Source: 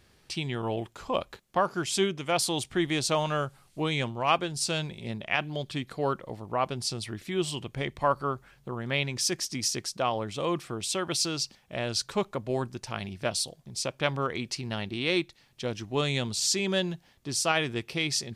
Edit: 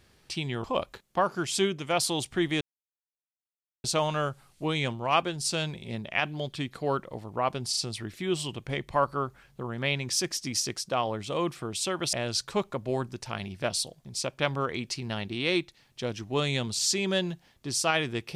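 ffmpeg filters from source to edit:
ffmpeg -i in.wav -filter_complex "[0:a]asplit=6[link_01][link_02][link_03][link_04][link_05][link_06];[link_01]atrim=end=0.642[link_07];[link_02]atrim=start=1.028:end=3,asetpts=PTS-STARTPTS,afade=type=out:start_time=1.968:duration=0.004:curve=hsin,apad=pad_dur=1.23[link_08];[link_03]atrim=start=3:end=6.892,asetpts=PTS-STARTPTS,afade=type=in:duration=0.004:curve=hsin[link_09];[link_04]atrim=start=6.848:end=6.892[link_10];[link_05]atrim=start=6.848:end=11.212[link_11];[link_06]atrim=start=11.738[link_12];[link_08][link_09]concat=n=2:v=0:a=1[link_13];[link_07][link_13]acrossfade=duration=0.004:curve1=hsin:curve2=hsin[link_14];[link_14][link_10]acrossfade=duration=0.004:curve1=hsin:curve2=hsin[link_15];[link_15][link_11]acrossfade=duration=0.004:curve1=hsin:curve2=hsin[link_16];[link_16][link_12]acrossfade=duration=0.004:curve1=hsin:curve2=hsin" out.wav

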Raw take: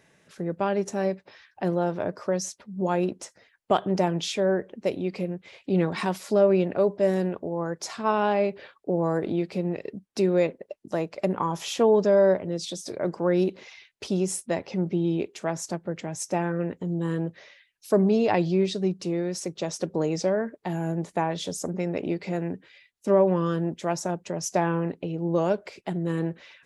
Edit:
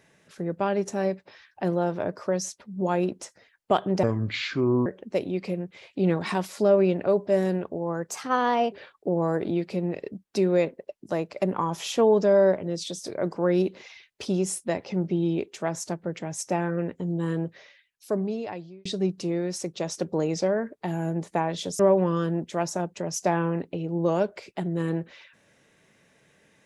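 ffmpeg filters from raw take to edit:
ffmpeg -i in.wav -filter_complex "[0:a]asplit=7[link_01][link_02][link_03][link_04][link_05][link_06][link_07];[link_01]atrim=end=4.034[link_08];[link_02]atrim=start=4.03:end=4.57,asetpts=PTS-STARTPTS,asetrate=28665,aresample=44100[link_09];[link_03]atrim=start=4.566:end=7.804[link_10];[link_04]atrim=start=7.8:end=8.54,asetpts=PTS-STARTPTS,asetrate=51597,aresample=44100,atrim=end_sample=27892,asetpts=PTS-STARTPTS[link_11];[link_05]atrim=start=8.536:end=18.67,asetpts=PTS-STARTPTS,afade=type=out:start_time=8.714:duration=1.42[link_12];[link_06]atrim=start=18.67:end=21.612,asetpts=PTS-STARTPTS,afade=type=in:duration=0.004:curve=hsin[link_13];[link_07]atrim=start=23.088[link_14];[link_08][link_09]acrossfade=duration=0.004:curve1=hsin:curve2=hsin[link_15];[link_15][link_10]acrossfade=duration=0.004:curve1=hsin:curve2=hsin[link_16];[link_16][link_11]acrossfade=duration=0.004:curve1=hsin:curve2=hsin[link_17];[link_12][link_13]concat=n=2:v=0:a=1[link_18];[link_17][link_18]acrossfade=duration=0.004:curve1=hsin:curve2=hsin[link_19];[link_19][link_14]acrossfade=duration=0.004:curve1=hsin:curve2=hsin" out.wav

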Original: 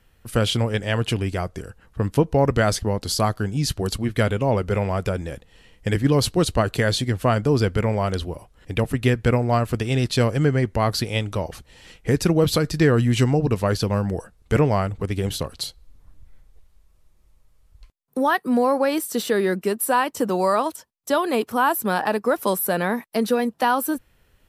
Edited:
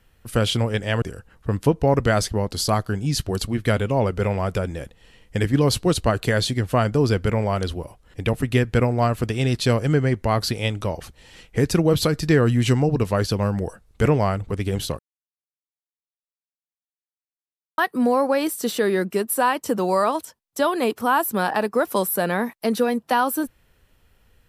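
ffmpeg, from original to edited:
ffmpeg -i in.wav -filter_complex "[0:a]asplit=4[link_01][link_02][link_03][link_04];[link_01]atrim=end=1.022[link_05];[link_02]atrim=start=1.528:end=15.5,asetpts=PTS-STARTPTS,afade=type=out:start_time=13.968:duration=0.004:curve=hsin[link_06];[link_03]atrim=start=15.5:end=18.29,asetpts=PTS-STARTPTS,volume=0[link_07];[link_04]atrim=start=18.29,asetpts=PTS-STARTPTS,afade=type=in:duration=0.004:curve=hsin[link_08];[link_06][link_07][link_08]concat=n=3:v=0:a=1[link_09];[link_05][link_09]acrossfade=duration=0.004:curve1=hsin:curve2=hsin" out.wav

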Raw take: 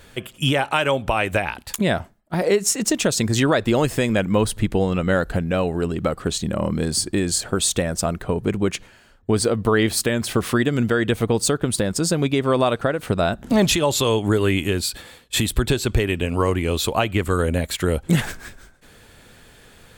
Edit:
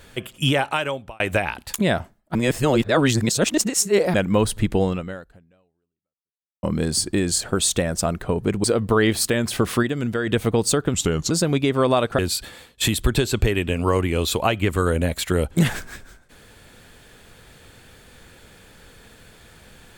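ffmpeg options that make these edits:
ffmpeg -i in.wav -filter_complex "[0:a]asplit=11[link_01][link_02][link_03][link_04][link_05][link_06][link_07][link_08][link_09][link_10][link_11];[link_01]atrim=end=1.2,asetpts=PTS-STARTPTS,afade=type=out:start_time=0.58:duration=0.62[link_12];[link_02]atrim=start=1.2:end=2.352,asetpts=PTS-STARTPTS,afade=type=in:duration=0.004:curve=hsin[link_13];[link_03]atrim=start=2.348:end=4.142,asetpts=PTS-STARTPTS,areverse[link_14];[link_04]atrim=start=4.138:end=6.63,asetpts=PTS-STARTPTS,afade=type=out:start_time=0.742:duration=1.75:curve=exp[link_15];[link_05]atrim=start=6.63:end=8.642,asetpts=PTS-STARTPTS,afade=type=in:duration=0.004:curve=hsin[link_16];[link_06]atrim=start=9.398:end=10.592[link_17];[link_07]atrim=start=10.588:end=11.032,asetpts=PTS-STARTPTS,volume=-4.5dB[link_18];[link_08]atrim=start=11.028:end=11.704[link_19];[link_09]atrim=start=11.7:end=12,asetpts=PTS-STARTPTS,asetrate=36162,aresample=44100,atrim=end_sample=16134,asetpts=PTS-STARTPTS[link_20];[link_10]atrim=start=11.996:end=12.882[link_21];[link_11]atrim=start=14.708[link_22];[link_12][link_13]concat=n=2:v=0:a=1[link_23];[link_23][link_14]acrossfade=duration=0.004:curve1=hsin:curve2=hsin[link_24];[link_15][link_16]concat=n=2:v=0:a=1[link_25];[link_24][link_25]acrossfade=duration=0.004:curve1=hsin:curve2=hsin[link_26];[link_26][link_17]acrossfade=duration=0.004:curve1=hsin:curve2=hsin[link_27];[link_27][link_18]acrossfade=duration=0.004:curve1=hsin:curve2=hsin[link_28];[link_28][link_19]acrossfade=duration=0.004:curve1=hsin:curve2=hsin[link_29];[link_29][link_20]acrossfade=duration=0.004:curve1=hsin:curve2=hsin[link_30];[link_30][link_21]acrossfade=duration=0.004:curve1=hsin:curve2=hsin[link_31];[link_31][link_22]acrossfade=duration=0.004:curve1=hsin:curve2=hsin" out.wav

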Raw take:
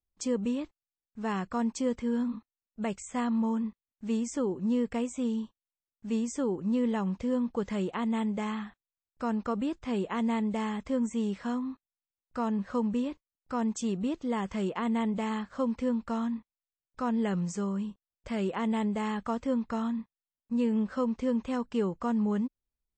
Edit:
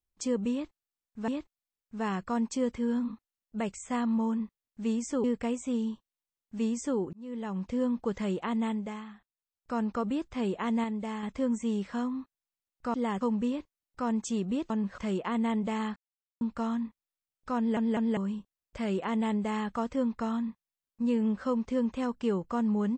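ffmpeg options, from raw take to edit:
ffmpeg -i in.wav -filter_complex "[0:a]asplit=17[link_01][link_02][link_03][link_04][link_05][link_06][link_07][link_08][link_09][link_10][link_11][link_12][link_13][link_14][link_15][link_16][link_17];[link_01]atrim=end=1.282[link_18];[link_02]atrim=start=0.518:end=4.482[link_19];[link_03]atrim=start=4.748:end=6.64,asetpts=PTS-STARTPTS,afade=type=out:start_time=1.888:duration=0.004:curve=hsin[link_20];[link_04]atrim=start=6.64:end=8.56,asetpts=PTS-STARTPTS,afade=type=in:duration=0.63,afade=type=out:start_time=1.48:duration=0.44:silence=0.316228[link_21];[link_05]atrim=start=8.56:end=8.84,asetpts=PTS-STARTPTS,volume=-10dB[link_22];[link_06]atrim=start=8.84:end=10.352,asetpts=PTS-STARTPTS,afade=type=in:duration=0.44:silence=0.316228[link_23];[link_07]atrim=start=10.348:end=10.742,asetpts=PTS-STARTPTS,volume=-4dB[link_24];[link_08]atrim=start=10.738:end=12.452[link_25];[link_09]atrim=start=14.218:end=14.492[link_26];[link_10]atrim=start=12.728:end=14.222[link_27];[link_11]atrim=start=12.448:end=12.732[link_28];[link_12]atrim=start=14.488:end=15.47,asetpts=PTS-STARTPTS,afade=type=out:start_time=0.978:duration=0.004:curve=hsin[link_29];[link_13]atrim=start=15.47:end=15.92,asetpts=PTS-STARTPTS,volume=0[link_30];[link_14]atrim=start=15.92:end=17.282,asetpts=PTS-STARTPTS,afade=type=in:duration=0.004:curve=hsin[link_31];[link_15]atrim=start=17.078:end=17.282[link_32];[link_16]atrim=start=17.078:end=17.282[link_33];[link_17]atrim=start=17.678[link_34];[link_18][link_19]acrossfade=duration=0.004:curve1=hsin:curve2=hsin[link_35];[link_20][link_21][link_22][link_23]concat=n=4:v=0:a=1[link_36];[link_35][link_36]acrossfade=duration=0.004:curve1=hsin:curve2=hsin[link_37];[link_37][link_24]acrossfade=duration=0.004:curve1=hsin:curve2=hsin[link_38];[link_38][link_25]acrossfade=duration=0.004:curve1=hsin:curve2=hsin[link_39];[link_39][link_26]acrossfade=duration=0.004:curve1=hsin:curve2=hsin[link_40];[link_40][link_27]acrossfade=duration=0.004:curve1=hsin:curve2=hsin[link_41];[link_41][link_28]acrossfade=duration=0.004:curve1=hsin:curve2=hsin[link_42];[link_29][link_30][link_31]concat=n=3:v=0:a=1[link_43];[link_42][link_43]acrossfade=duration=0.004:curve1=hsin:curve2=hsin[link_44];[link_44][link_32]acrossfade=duration=0.004:curve1=hsin:curve2=hsin[link_45];[link_45][link_33]acrossfade=duration=0.004:curve1=hsin:curve2=hsin[link_46];[link_46][link_34]acrossfade=duration=0.004:curve1=hsin:curve2=hsin" out.wav

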